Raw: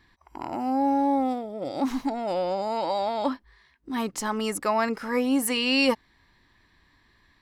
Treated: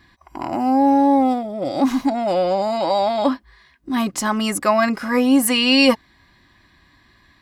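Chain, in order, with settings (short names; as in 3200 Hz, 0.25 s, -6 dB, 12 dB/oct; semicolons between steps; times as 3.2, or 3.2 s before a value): notch comb 450 Hz; gain +9 dB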